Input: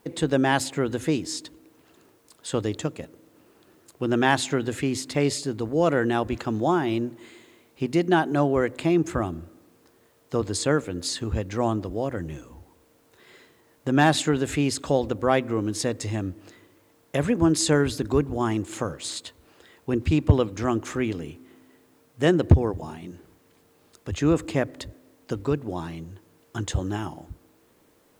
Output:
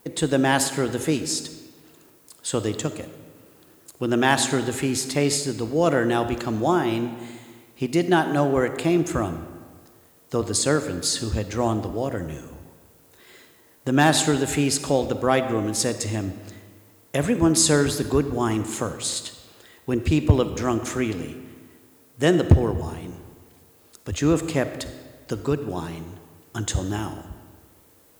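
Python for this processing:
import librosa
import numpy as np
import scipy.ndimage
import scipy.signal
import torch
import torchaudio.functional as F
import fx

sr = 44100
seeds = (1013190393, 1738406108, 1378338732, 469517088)

y = fx.high_shelf(x, sr, hz=6700.0, db=11.0)
y = fx.rev_freeverb(y, sr, rt60_s=1.6, hf_ratio=0.75, predelay_ms=10, drr_db=10.0)
y = y * 10.0 ** (1.0 / 20.0)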